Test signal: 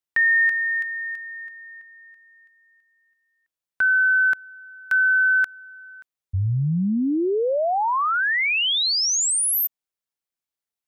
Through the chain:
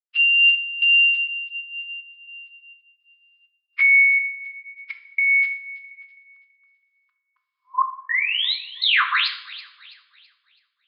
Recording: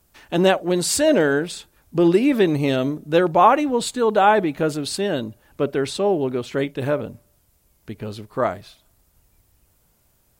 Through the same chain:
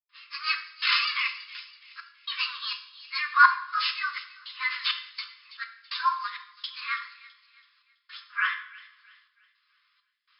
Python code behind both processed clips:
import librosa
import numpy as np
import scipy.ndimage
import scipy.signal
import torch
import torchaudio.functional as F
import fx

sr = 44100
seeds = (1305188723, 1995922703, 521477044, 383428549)

p1 = fx.partial_stretch(x, sr, pct=121)
p2 = fx.rider(p1, sr, range_db=3, speed_s=0.5)
p3 = fx.step_gate(p2, sr, bpm=165, pattern='.xxxxx..', floor_db=-60.0, edge_ms=4.5)
p4 = fx.rotary(p3, sr, hz=0.75)
p5 = np.repeat(p4[::4], 4)[:len(p4)]
p6 = fx.brickwall_bandpass(p5, sr, low_hz=1000.0, high_hz=5300.0)
p7 = p6 + fx.echo_wet_highpass(p6, sr, ms=329, feedback_pct=39, hz=2500.0, wet_db=-14.5, dry=0)
p8 = fx.rev_double_slope(p7, sr, seeds[0], early_s=0.56, late_s=1.5, knee_db=-18, drr_db=5.5)
y = p8 * librosa.db_to_amplitude(8.5)